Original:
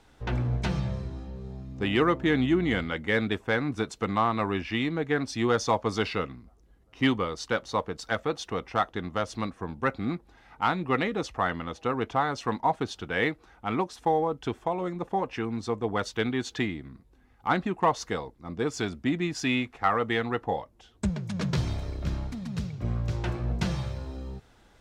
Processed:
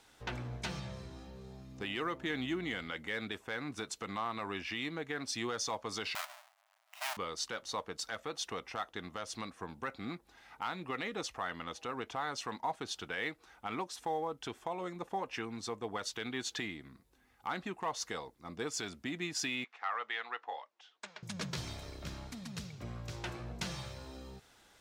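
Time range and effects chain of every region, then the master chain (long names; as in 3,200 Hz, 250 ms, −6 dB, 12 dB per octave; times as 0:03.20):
0:06.15–0:07.17: each half-wave held at its own peak + linear-phase brick-wall high-pass 580 Hz + high-shelf EQ 3,800 Hz −9.5 dB
0:19.64–0:21.23: high-pass filter 870 Hz + high-frequency loss of the air 150 metres
whole clip: downward compressor 1.5 to 1, threshold −34 dBFS; spectral tilt +2.5 dB per octave; brickwall limiter −22 dBFS; level −3.5 dB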